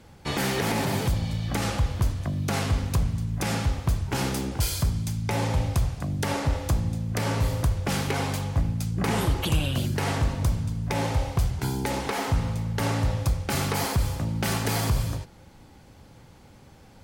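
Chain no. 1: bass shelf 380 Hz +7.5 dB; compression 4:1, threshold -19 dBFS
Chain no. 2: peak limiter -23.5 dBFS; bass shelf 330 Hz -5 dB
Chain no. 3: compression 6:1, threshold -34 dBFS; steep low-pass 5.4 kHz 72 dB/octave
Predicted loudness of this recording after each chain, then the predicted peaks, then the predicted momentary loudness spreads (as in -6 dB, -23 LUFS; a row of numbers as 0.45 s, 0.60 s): -24.5 LUFS, -35.0 LUFS, -38.0 LUFS; -10.5 dBFS, -22.5 dBFS, -20.5 dBFS; 2 LU, 5 LU, 4 LU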